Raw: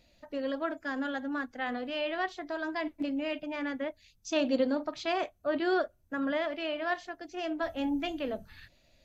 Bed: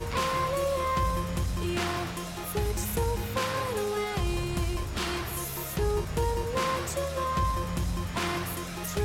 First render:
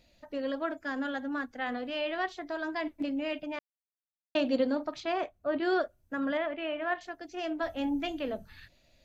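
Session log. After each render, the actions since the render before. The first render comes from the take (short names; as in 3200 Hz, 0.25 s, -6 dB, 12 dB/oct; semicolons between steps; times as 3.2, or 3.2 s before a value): 3.59–4.35 mute; 5–5.63 high shelf 3600 Hz -10 dB; 6.37–7.01 LPF 3000 Hz 24 dB/oct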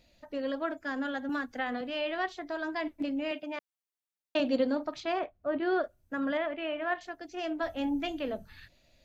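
1.29–1.81 three-band squash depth 100%; 3.31–4.4 HPF 230 Hz; 5.19–5.84 air absorption 230 m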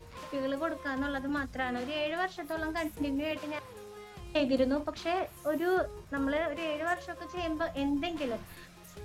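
add bed -17.5 dB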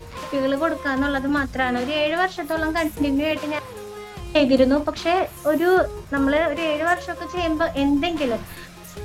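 gain +11.5 dB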